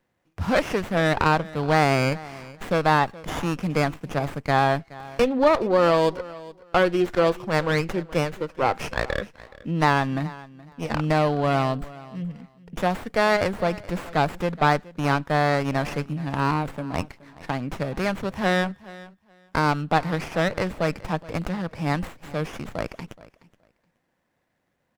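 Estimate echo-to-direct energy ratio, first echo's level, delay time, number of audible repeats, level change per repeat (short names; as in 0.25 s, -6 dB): -19.5 dB, -19.5 dB, 0.423 s, 2, -15.0 dB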